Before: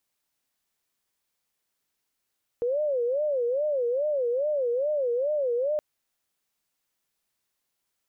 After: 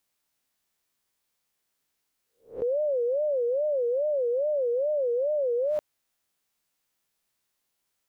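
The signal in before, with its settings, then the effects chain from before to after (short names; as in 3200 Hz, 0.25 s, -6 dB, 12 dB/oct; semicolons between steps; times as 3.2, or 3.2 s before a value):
siren wail 472–608 Hz 2.4/s sine -23 dBFS 3.17 s
spectral swells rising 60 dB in 0.32 s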